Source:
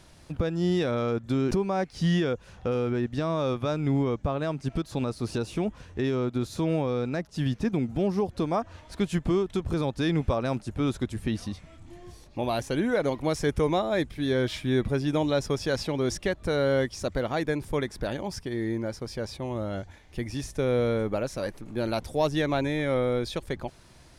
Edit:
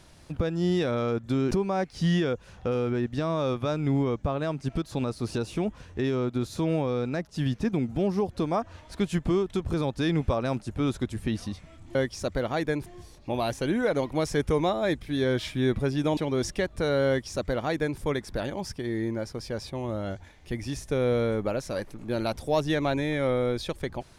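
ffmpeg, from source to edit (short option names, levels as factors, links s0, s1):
-filter_complex "[0:a]asplit=4[s0][s1][s2][s3];[s0]atrim=end=11.952[s4];[s1]atrim=start=16.748:end=17.662[s5];[s2]atrim=start=11.948:end=15.262[s6];[s3]atrim=start=15.838[s7];[s4][s5]acrossfade=d=0.004:c1=hsin:c2=hsin[s8];[s8][s6]acrossfade=d=0.004:c1=hsin:c2=hsin[s9];[s9][s7]acrossfade=d=0.004:c1=hsin:c2=hsin"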